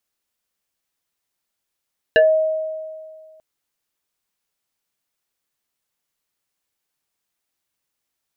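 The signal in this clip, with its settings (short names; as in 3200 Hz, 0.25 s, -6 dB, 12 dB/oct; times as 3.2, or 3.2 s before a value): FM tone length 1.24 s, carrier 631 Hz, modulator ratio 1.74, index 1.7, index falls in 0.19 s exponential, decay 1.96 s, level -8 dB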